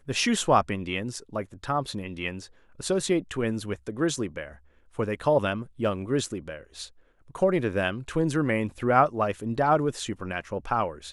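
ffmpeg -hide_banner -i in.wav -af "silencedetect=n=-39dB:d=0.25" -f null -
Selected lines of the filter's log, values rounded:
silence_start: 2.46
silence_end: 2.80 | silence_duration: 0.33
silence_start: 4.52
silence_end: 4.99 | silence_duration: 0.46
silence_start: 6.87
silence_end: 7.31 | silence_duration: 0.43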